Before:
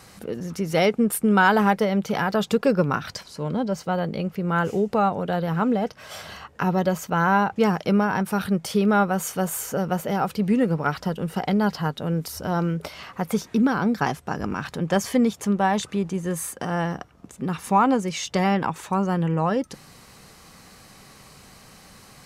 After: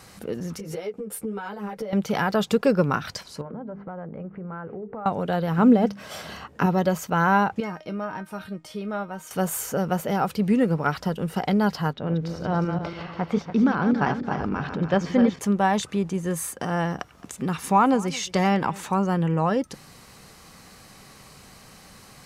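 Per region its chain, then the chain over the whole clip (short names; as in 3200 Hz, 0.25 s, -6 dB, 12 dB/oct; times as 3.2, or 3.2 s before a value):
0.58–1.93 bell 470 Hz +12 dB 0.44 oct + compressor 16:1, threshold -26 dBFS + ensemble effect
3.41–5.06 LPF 1700 Hz 24 dB/oct + notches 50/100/150/200/250/300/350/400/450 Hz + compressor 5:1, threshold -33 dBFS
5.58–6.66 bell 240 Hz +7.5 dB 1.8 oct + notches 50/100/150/200 Hz
7.6–9.31 high shelf 7800 Hz -8 dB + resonator 310 Hz, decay 0.18 s, mix 80%
11.93–15.39 regenerating reverse delay 0.143 s, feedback 58%, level -7 dB + air absorption 190 m
16.99–18.99 echo 0.218 s -21 dB + mismatched tape noise reduction encoder only
whole clip: dry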